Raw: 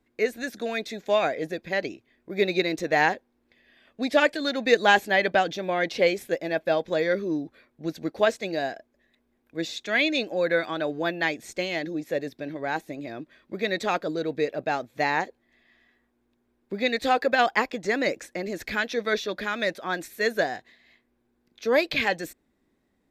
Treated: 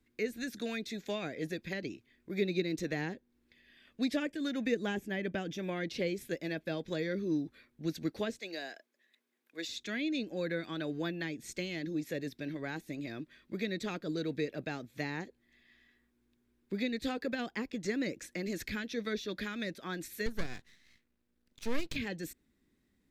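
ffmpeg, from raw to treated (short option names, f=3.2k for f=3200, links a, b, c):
-filter_complex "[0:a]asettb=1/sr,asplit=3[a][b][c];[a]atrim=end=4.154[d];[b]atrim=start=4.15:end=5.77,asetpts=PTS-STARTPTS,afade=t=in:d=0.004:c=qsin,afade=t=out:st=1.616:d=0.004:c=qsin,equalizer=f=4.2k:w=6:g=-14.5[e];[c]atrim=start=5.766[f];[d][e]acrossfade=d=0.004:c1=hsin:c2=qsin[g];[g][f]acrossfade=d=0.004:c1=qsin:c2=hsin,asettb=1/sr,asplit=3[h][i][j];[h]atrim=end=8.394[k];[i]atrim=start=8.39:end=9.69,asetpts=PTS-STARTPTS,afade=t=in:d=0.004:c=qsin,afade=t=out:st=1.296:d=0.004:c=qsin,highpass=480[l];[j]atrim=start=9.686[m];[k][l]acrossfade=d=0.004:c1=hsin:c2=qsin[n];[n][m]acrossfade=d=0.004:c1=qsin:c2=hsin,asettb=1/sr,asplit=3[o][p][q];[o]atrim=end=20.264[r];[p]atrim=start=20.26:end=21.96,asetpts=PTS-STARTPTS,afade=t=in:d=0.004:c=qsin,afade=t=out:st=1.696:d=0.004:c=qsin,aeval=exprs='max(val(0),0)':c=same[s];[q]atrim=start=21.956[t];[r][s]acrossfade=d=0.004:c1=hsin:c2=qsin[u];[u][t]acrossfade=d=0.004:c1=qsin:c2=hsin,equalizer=f=710:t=o:w=1.7:g=-12.5,acrossover=split=460[v][w];[w]acompressor=threshold=-39dB:ratio=6[x];[v][x]amix=inputs=2:normalize=0"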